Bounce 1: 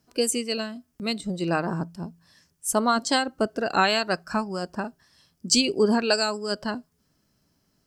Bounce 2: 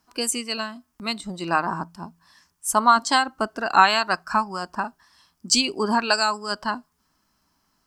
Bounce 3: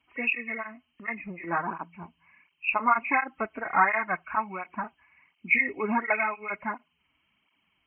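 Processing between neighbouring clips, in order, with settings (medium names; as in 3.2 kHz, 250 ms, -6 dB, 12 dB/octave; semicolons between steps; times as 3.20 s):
graphic EQ 125/500/1000 Hz -11/-10/+11 dB; trim +1.5 dB
knee-point frequency compression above 1.7 kHz 4:1; cancelling through-zero flanger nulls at 1.4 Hz, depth 5.8 ms; trim -3.5 dB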